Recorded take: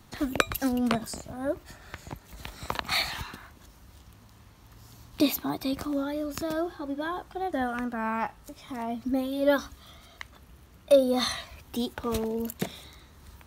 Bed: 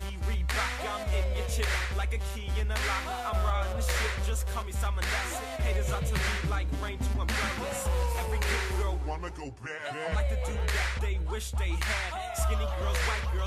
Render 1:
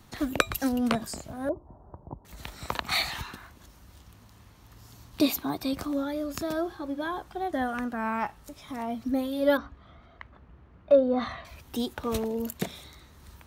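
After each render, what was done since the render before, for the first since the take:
0:01.49–0:02.25: elliptic low-pass filter 1,000 Hz, stop band 60 dB
0:09.57–0:11.45: low-pass filter 1,700 Hz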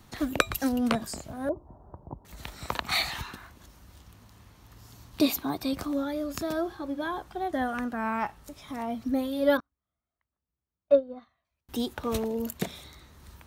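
0:09.60–0:11.69: expander for the loud parts 2.5 to 1, over −39 dBFS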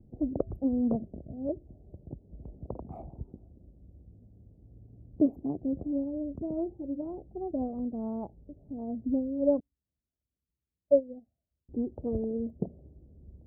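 adaptive Wiener filter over 41 samples
inverse Chebyshev low-pass filter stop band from 1,600 Hz, stop band 50 dB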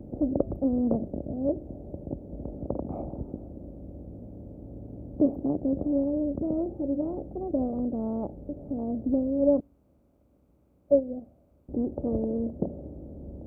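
compressor on every frequency bin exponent 0.6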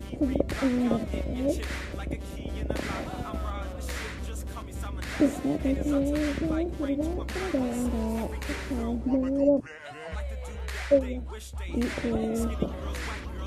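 mix in bed −6 dB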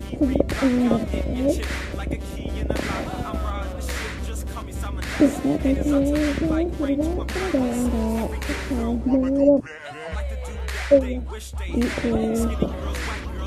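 level +6 dB

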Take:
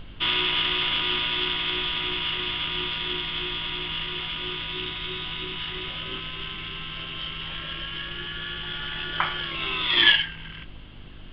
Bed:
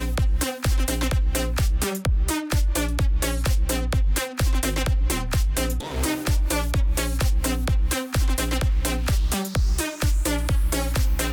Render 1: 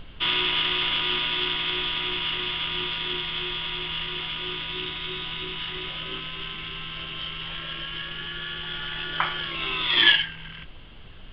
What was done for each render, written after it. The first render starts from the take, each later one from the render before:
hum removal 50 Hz, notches 7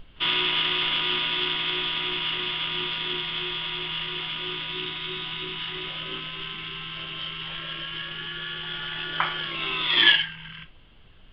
noise reduction from a noise print 8 dB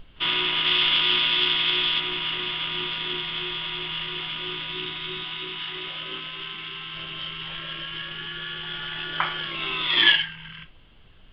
0:00.66–0:02.00: high-shelf EQ 2,900 Hz +9 dB
0:05.23–0:06.93: low-shelf EQ 160 Hz −9 dB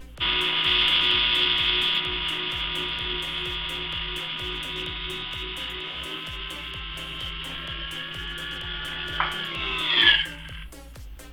mix in bed −20 dB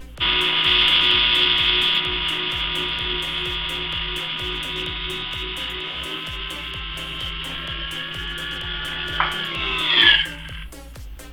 level +4.5 dB
brickwall limiter −1 dBFS, peak gain reduction 2 dB

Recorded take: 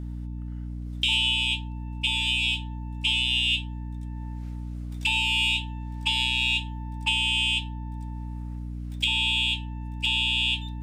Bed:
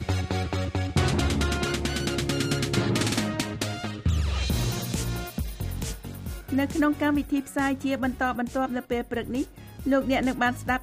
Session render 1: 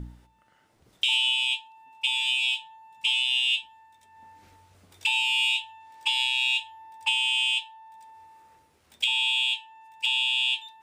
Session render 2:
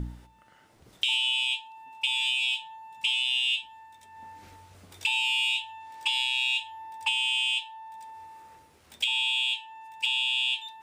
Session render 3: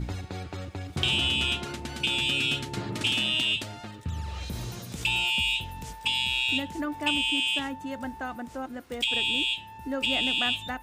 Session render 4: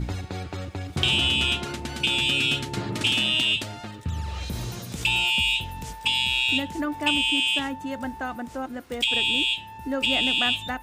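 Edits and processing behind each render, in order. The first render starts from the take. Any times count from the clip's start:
hum removal 60 Hz, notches 6
in parallel at −2 dB: brickwall limiter −21 dBFS, peak gain reduction 8.5 dB; on the sum: downward compressor 2 to 1, threshold −28 dBFS, peak gain reduction 6 dB
mix in bed −9 dB
level +3.5 dB

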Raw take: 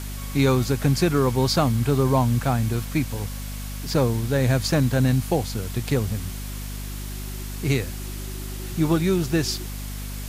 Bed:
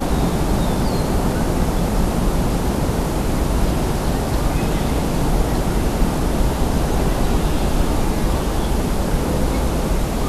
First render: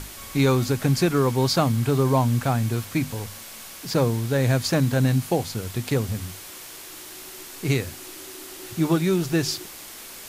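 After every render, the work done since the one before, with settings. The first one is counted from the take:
mains-hum notches 50/100/150/200/250 Hz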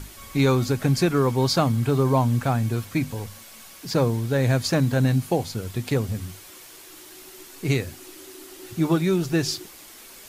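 broadband denoise 6 dB, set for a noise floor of −41 dBFS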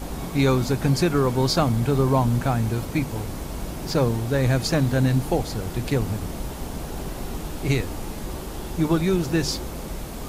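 mix in bed −13.5 dB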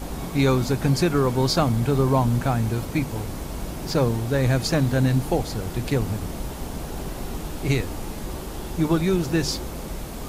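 no processing that can be heard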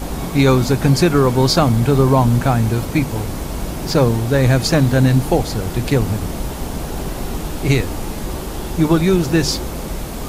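level +7 dB
brickwall limiter −2 dBFS, peak gain reduction 1.5 dB

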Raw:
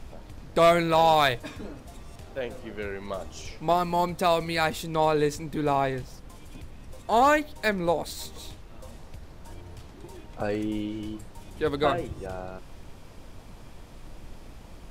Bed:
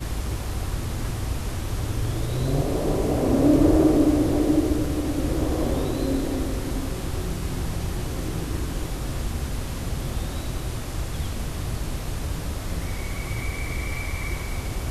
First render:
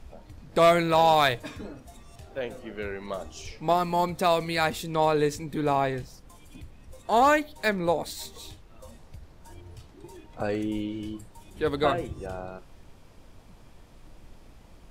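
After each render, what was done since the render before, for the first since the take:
noise reduction from a noise print 6 dB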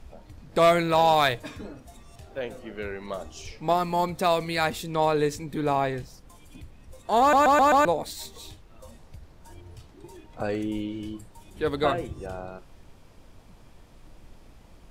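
0:07.20: stutter in place 0.13 s, 5 plays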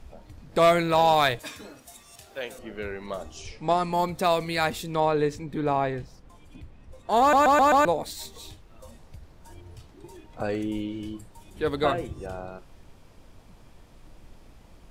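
0:01.39–0:02.59: spectral tilt +3 dB per octave
0:03.37–0:03.93: Butterworth low-pass 11,000 Hz 96 dB per octave
0:05.00–0:07.10: low-pass filter 3,000 Hz 6 dB per octave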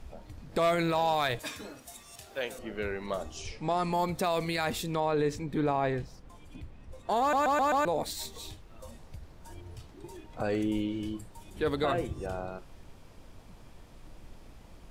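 brickwall limiter −19.5 dBFS, peak gain reduction 8 dB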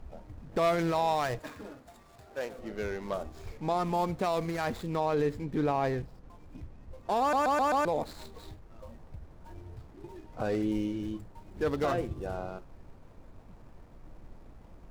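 running median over 15 samples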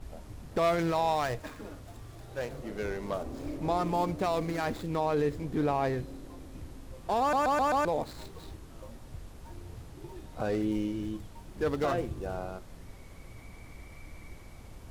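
mix in bed −21.5 dB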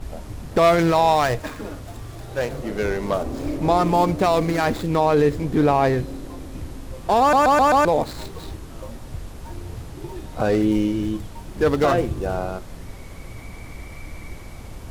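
level +11 dB

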